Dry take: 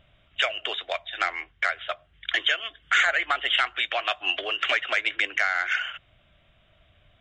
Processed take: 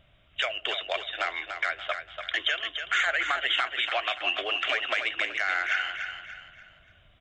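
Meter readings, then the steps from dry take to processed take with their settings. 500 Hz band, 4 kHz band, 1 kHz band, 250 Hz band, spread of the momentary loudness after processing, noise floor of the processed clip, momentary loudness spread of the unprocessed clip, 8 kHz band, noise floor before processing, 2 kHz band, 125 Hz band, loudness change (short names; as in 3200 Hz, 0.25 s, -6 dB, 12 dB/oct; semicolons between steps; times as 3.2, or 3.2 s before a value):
-1.5 dB, -2.0 dB, -2.5 dB, -1.0 dB, 9 LU, -60 dBFS, 10 LU, -3.5 dB, -62 dBFS, -2.5 dB, n/a, -2.5 dB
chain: limiter -15 dBFS, peak gain reduction 4.5 dB; vibrato 8.3 Hz 18 cents; feedback echo 0.29 s, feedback 38%, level -7.5 dB; gain -1 dB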